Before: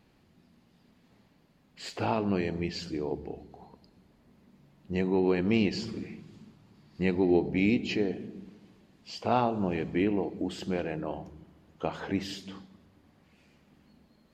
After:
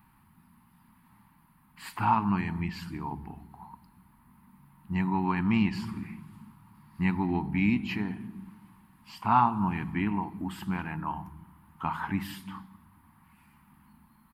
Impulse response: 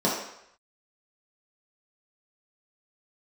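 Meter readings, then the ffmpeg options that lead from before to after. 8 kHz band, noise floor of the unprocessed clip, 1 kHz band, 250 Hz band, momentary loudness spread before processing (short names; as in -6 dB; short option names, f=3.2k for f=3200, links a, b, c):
n/a, -65 dBFS, +6.5 dB, 0.0 dB, 18 LU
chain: -af "firequalizer=gain_entry='entry(210,0);entry(510,-28);entry(920,10);entry(1500,2);entry(3500,-9);entry(6500,-14);entry(9900,11)':delay=0.05:min_phase=1,volume=3dB"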